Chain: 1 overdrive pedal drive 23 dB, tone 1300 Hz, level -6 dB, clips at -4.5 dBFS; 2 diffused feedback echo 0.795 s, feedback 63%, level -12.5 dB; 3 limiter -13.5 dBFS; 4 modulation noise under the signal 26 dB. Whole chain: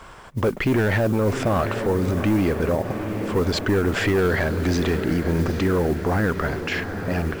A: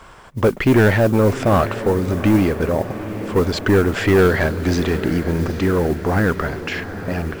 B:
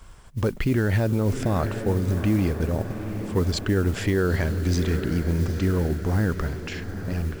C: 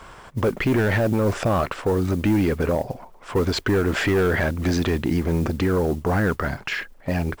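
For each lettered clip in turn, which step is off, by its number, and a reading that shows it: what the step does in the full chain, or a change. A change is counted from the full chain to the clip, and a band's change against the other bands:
3, mean gain reduction 2.0 dB; 1, crest factor change +2.0 dB; 2, momentary loudness spread change +2 LU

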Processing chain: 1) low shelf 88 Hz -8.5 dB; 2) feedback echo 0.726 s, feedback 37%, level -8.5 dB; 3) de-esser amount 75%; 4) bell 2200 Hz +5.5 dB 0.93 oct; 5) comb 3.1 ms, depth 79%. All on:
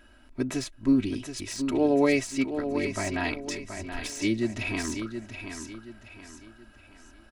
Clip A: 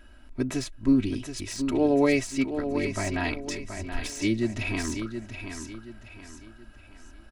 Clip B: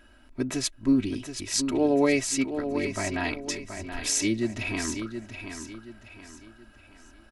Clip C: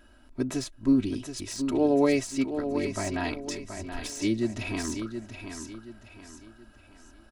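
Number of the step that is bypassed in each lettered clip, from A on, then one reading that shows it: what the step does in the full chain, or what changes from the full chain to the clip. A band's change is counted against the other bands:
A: 1, 125 Hz band +3.0 dB; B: 3, 8 kHz band +8.0 dB; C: 4, 2 kHz band -4.5 dB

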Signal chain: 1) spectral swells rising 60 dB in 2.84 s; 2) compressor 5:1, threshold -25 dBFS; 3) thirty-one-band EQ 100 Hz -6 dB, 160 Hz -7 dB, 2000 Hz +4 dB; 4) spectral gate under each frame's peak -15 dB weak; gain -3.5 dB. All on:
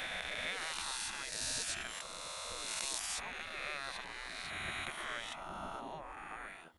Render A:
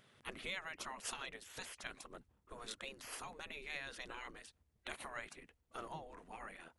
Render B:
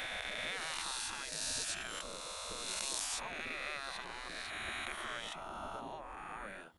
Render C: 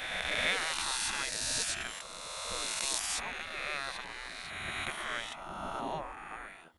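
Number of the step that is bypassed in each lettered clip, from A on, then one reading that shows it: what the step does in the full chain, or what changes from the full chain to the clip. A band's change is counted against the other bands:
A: 1, 8 kHz band -6.0 dB; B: 3, 125 Hz band -1.5 dB; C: 2, mean gain reduction 4.0 dB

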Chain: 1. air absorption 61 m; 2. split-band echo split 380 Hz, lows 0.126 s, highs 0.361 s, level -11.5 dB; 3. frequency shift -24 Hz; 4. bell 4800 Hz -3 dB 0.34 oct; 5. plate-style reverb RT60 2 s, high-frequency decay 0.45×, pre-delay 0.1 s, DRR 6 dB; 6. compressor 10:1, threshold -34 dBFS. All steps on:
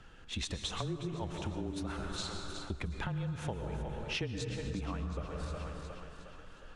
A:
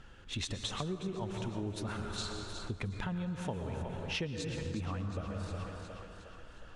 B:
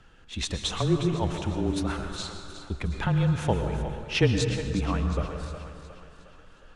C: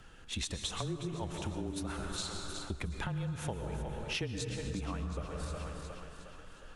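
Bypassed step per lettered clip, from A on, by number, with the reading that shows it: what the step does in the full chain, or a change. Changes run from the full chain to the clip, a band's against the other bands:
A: 3, crest factor change -3.0 dB; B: 6, mean gain reduction 7.0 dB; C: 1, 8 kHz band +4.5 dB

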